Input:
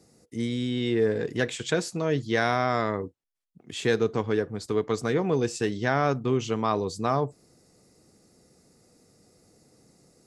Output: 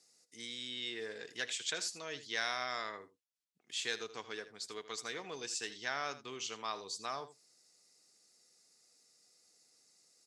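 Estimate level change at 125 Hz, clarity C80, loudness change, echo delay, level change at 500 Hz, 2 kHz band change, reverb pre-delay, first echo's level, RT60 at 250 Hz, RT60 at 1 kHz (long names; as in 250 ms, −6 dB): −31.0 dB, no reverb audible, −13.0 dB, 80 ms, −20.0 dB, −8.5 dB, no reverb audible, −14.5 dB, no reverb audible, no reverb audible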